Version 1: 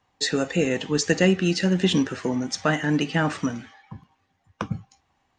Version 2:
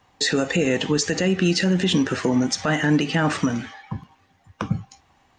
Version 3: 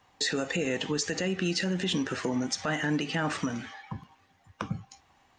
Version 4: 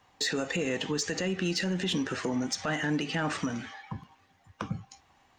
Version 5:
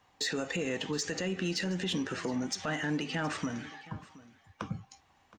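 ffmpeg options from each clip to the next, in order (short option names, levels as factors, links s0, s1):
-filter_complex "[0:a]asplit=2[s0][s1];[s1]acompressor=threshold=0.0355:ratio=6,volume=1[s2];[s0][s2]amix=inputs=2:normalize=0,alimiter=limit=0.188:level=0:latency=1:release=67,volume=1.5"
-filter_complex "[0:a]lowshelf=f=400:g=-4,asplit=2[s0][s1];[s1]acompressor=threshold=0.0251:ratio=6,volume=1.06[s2];[s0][s2]amix=inputs=2:normalize=0,volume=0.355"
-af "asoftclip=type=tanh:threshold=0.112"
-af "aecho=1:1:720:0.106,volume=0.708"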